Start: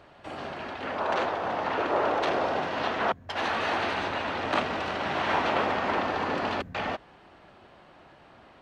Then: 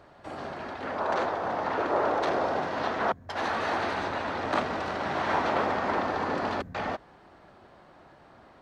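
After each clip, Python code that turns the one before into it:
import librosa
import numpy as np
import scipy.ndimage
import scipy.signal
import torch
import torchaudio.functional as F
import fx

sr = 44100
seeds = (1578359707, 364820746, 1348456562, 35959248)

y = fx.peak_eq(x, sr, hz=2800.0, db=-7.5, octaves=0.72)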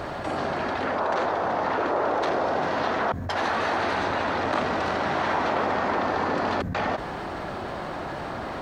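y = fx.env_flatten(x, sr, amount_pct=70)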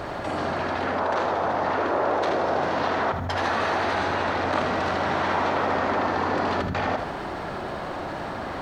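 y = fx.echo_feedback(x, sr, ms=78, feedback_pct=43, wet_db=-7.5)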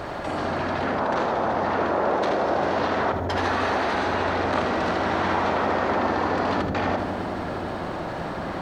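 y = fx.echo_wet_lowpass(x, sr, ms=187, feedback_pct=83, hz=440.0, wet_db=-5.0)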